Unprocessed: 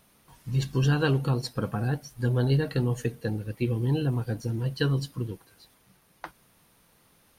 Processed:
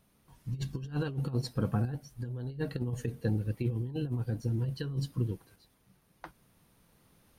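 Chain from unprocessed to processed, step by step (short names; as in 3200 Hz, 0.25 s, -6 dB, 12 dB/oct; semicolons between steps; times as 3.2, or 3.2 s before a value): low shelf 390 Hz +8 dB; negative-ratio compressor -21 dBFS, ratio -0.5; tremolo saw up 0.54 Hz, depth 45%; gain -8 dB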